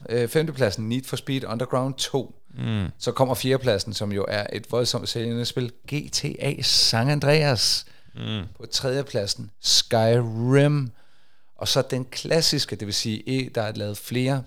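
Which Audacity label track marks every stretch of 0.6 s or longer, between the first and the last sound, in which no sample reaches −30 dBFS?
10.880000	11.610000	silence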